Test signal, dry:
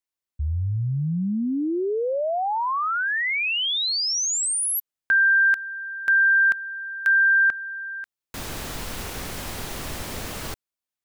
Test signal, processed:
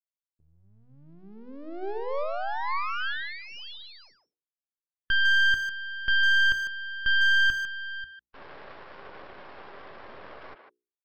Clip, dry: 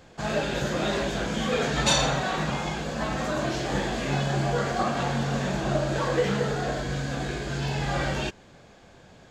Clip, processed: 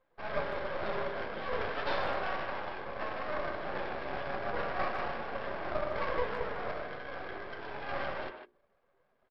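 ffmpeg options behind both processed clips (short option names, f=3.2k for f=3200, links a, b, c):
-filter_complex "[0:a]afftdn=nr=16:nf=-40,highpass=350,equalizer=f=400:t=q:w=4:g=7,equalizer=f=570:t=q:w=4:g=8,equalizer=f=810:t=q:w=4:g=4,equalizer=f=1.1k:t=q:w=4:g=8,equalizer=f=1.6k:t=q:w=4:g=7,equalizer=f=2.5k:t=q:w=4:g=-9,lowpass=f=3.2k:w=0.5412,lowpass=f=3.2k:w=1.3066,aresample=11025,aeval=exprs='max(val(0),0)':c=same,aresample=44100,bandreject=f=60:t=h:w=6,bandreject=f=120:t=h:w=6,bandreject=f=180:t=h:w=6,bandreject=f=240:t=h:w=6,bandreject=f=300:t=h:w=6,bandreject=f=360:t=h:w=6,bandreject=f=420:t=h:w=6,bandreject=f=480:t=h:w=6,asplit=2[a][b];[b]adelay=150,highpass=300,lowpass=3.4k,asoftclip=type=hard:threshold=-15.5dB,volume=-7dB[c];[a][c]amix=inputs=2:normalize=0,volume=-8.5dB"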